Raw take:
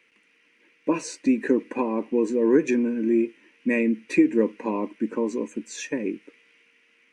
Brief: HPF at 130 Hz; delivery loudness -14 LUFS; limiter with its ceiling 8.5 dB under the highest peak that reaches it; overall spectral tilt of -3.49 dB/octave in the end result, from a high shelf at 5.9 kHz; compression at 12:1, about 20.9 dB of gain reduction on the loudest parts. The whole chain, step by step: high-pass 130 Hz; treble shelf 5.9 kHz +6 dB; compression 12:1, threshold -34 dBFS; trim +27 dB; peak limiter -3.5 dBFS

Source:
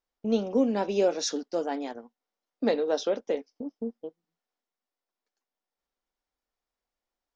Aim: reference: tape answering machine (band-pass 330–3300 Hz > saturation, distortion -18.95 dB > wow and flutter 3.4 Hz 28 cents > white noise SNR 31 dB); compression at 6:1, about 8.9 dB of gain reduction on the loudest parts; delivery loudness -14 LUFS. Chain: compression 6:1, threshold -29 dBFS; band-pass 330–3300 Hz; saturation -27 dBFS; wow and flutter 3.4 Hz 28 cents; white noise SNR 31 dB; trim +25 dB

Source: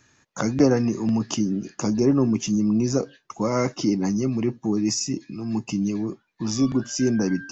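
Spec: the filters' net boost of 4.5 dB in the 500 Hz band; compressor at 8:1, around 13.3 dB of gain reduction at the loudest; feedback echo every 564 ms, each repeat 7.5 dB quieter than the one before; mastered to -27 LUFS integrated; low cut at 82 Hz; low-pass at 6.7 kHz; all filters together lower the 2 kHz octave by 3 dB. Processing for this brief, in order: high-pass 82 Hz; low-pass 6.7 kHz; peaking EQ 500 Hz +6 dB; peaking EQ 2 kHz -4.5 dB; compression 8:1, threshold -24 dBFS; feedback delay 564 ms, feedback 42%, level -7.5 dB; trim +1.5 dB

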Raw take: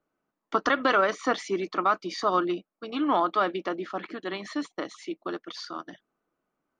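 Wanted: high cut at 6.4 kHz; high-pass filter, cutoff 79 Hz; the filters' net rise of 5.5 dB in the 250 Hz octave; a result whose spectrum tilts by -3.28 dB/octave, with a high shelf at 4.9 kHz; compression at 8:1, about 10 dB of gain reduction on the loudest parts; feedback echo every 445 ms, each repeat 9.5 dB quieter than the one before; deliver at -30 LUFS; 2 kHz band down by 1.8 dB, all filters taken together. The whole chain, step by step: high-pass 79 Hz; low-pass 6.4 kHz; peaking EQ 250 Hz +7.5 dB; peaking EQ 2 kHz -3 dB; treble shelf 4.9 kHz +3.5 dB; compression 8:1, threshold -28 dBFS; feedback delay 445 ms, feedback 33%, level -9.5 dB; trim +3.5 dB

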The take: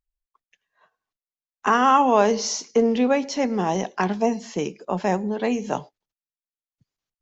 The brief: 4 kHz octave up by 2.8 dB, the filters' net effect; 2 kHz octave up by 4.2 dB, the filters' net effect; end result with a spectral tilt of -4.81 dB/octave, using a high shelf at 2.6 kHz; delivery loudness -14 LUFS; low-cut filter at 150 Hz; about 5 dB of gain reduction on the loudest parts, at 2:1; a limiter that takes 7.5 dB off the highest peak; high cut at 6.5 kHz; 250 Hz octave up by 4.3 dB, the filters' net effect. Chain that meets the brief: high-pass 150 Hz; low-pass 6.5 kHz; peaking EQ 250 Hz +5.5 dB; peaking EQ 2 kHz +6 dB; treble shelf 2.6 kHz -5.5 dB; peaking EQ 4 kHz +8.5 dB; compression 2:1, threshold -20 dBFS; trim +11 dB; peak limiter -3 dBFS

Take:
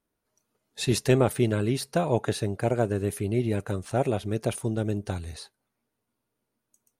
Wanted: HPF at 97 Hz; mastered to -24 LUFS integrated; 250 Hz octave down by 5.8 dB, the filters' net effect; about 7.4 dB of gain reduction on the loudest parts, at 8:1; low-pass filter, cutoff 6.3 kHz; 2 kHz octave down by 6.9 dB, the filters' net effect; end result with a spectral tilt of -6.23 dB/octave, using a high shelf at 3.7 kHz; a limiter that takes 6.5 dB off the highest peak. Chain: high-pass 97 Hz; low-pass 6.3 kHz; peaking EQ 250 Hz -8 dB; peaking EQ 2 kHz -8.5 dB; treble shelf 3.7 kHz -4 dB; compression 8:1, threshold -27 dBFS; trim +12 dB; peak limiter -10.5 dBFS

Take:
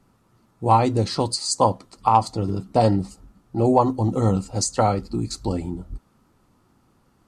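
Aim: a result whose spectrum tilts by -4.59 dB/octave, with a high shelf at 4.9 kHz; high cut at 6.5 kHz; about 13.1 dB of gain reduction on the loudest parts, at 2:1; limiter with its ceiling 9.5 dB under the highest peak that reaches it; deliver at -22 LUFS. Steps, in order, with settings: low-pass 6.5 kHz; treble shelf 4.9 kHz +8.5 dB; compression 2:1, threshold -36 dBFS; trim +14 dB; peak limiter -11 dBFS

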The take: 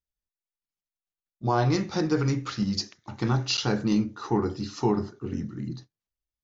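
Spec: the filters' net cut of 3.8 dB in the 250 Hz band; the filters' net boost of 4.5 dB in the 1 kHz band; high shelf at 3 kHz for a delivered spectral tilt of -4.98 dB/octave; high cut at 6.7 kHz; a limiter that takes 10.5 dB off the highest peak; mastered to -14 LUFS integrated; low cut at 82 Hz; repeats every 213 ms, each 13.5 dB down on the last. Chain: high-pass 82 Hz; low-pass 6.7 kHz; peaking EQ 250 Hz -5.5 dB; peaking EQ 1 kHz +5.5 dB; treble shelf 3 kHz +6 dB; peak limiter -20 dBFS; feedback delay 213 ms, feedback 21%, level -13.5 dB; trim +17.5 dB

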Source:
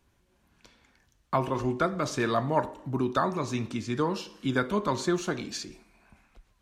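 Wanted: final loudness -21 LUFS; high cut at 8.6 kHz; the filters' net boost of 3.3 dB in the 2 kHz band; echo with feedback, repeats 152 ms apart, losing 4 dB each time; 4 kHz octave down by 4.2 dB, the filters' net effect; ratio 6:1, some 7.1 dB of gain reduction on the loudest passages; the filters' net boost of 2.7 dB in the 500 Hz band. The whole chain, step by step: low-pass 8.6 kHz; peaking EQ 500 Hz +3.5 dB; peaking EQ 2 kHz +5.5 dB; peaking EQ 4 kHz -6.5 dB; compression 6:1, threshold -26 dBFS; feedback delay 152 ms, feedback 63%, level -4 dB; trim +9.5 dB

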